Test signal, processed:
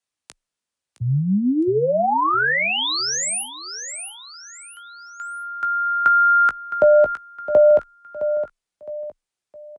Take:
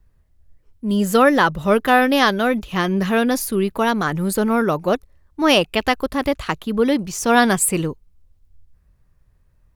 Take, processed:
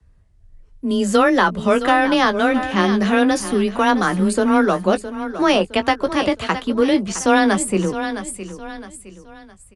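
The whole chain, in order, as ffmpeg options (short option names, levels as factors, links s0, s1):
-filter_complex "[0:a]aecho=1:1:663|1326|1989:0.211|0.0761|0.0274,acrossover=split=85|1700[s0][s1][s2];[s0]acompressor=threshold=0.00708:ratio=4[s3];[s1]acompressor=threshold=0.178:ratio=4[s4];[s2]acompressor=threshold=0.0501:ratio=4[s5];[s3][s4][s5]amix=inputs=3:normalize=0,asplit=2[s6][s7];[s7]adelay=17,volume=0.335[s8];[s6][s8]amix=inputs=2:normalize=0,afreqshift=19,aresample=22050,aresample=44100,volume=1.33"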